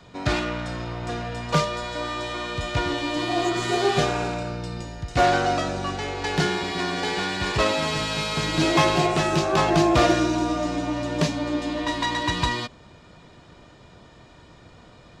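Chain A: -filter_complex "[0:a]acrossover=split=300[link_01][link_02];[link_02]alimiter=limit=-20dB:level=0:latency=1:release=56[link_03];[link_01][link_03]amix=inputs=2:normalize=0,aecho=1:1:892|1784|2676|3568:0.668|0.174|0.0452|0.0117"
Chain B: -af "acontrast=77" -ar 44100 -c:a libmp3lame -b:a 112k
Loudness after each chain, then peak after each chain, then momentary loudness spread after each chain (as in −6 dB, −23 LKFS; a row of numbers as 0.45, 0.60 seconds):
−25.5, −18.0 LKFS; −10.0, −5.0 dBFS; 7, 10 LU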